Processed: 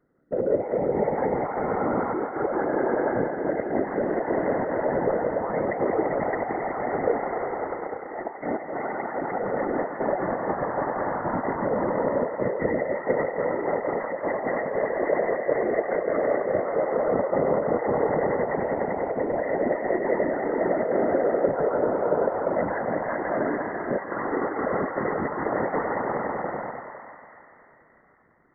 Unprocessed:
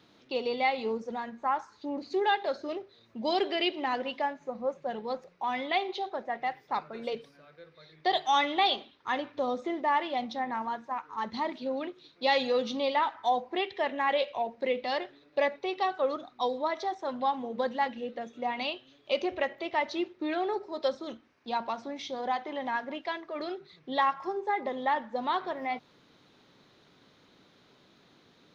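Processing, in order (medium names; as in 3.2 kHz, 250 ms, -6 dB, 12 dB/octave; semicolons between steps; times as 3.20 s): in parallel at -12 dB: small samples zeroed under -28 dBFS; on the sum: echo with a slow build-up 98 ms, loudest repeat 5, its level -11.5 dB; compressor with a negative ratio -31 dBFS, ratio -1; gate -35 dBFS, range -15 dB; rippled Chebyshev low-pass 2 kHz, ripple 9 dB; bass shelf 270 Hz +12 dB; thinning echo 168 ms, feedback 81%, high-pass 480 Hz, level -7 dB; whisper effect; trim +6 dB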